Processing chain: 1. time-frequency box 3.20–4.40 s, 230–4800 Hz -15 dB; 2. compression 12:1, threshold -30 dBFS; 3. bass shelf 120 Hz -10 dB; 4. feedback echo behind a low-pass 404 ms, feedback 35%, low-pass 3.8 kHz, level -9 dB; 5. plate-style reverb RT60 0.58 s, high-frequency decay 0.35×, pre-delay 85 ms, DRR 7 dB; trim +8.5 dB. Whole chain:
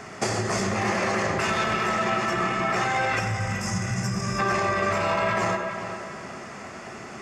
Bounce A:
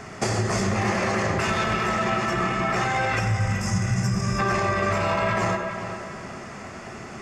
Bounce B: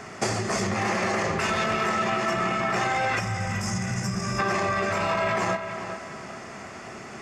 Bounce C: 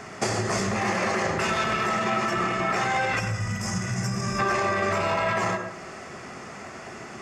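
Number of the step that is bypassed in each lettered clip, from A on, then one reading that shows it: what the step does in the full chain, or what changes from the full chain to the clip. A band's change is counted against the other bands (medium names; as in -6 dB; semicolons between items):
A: 3, 125 Hz band +5.0 dB; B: 5, echo-to-direct -4.5 dB to -8.5 dB; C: 4, echo-to-direct -4.5 dB to -7.0 dB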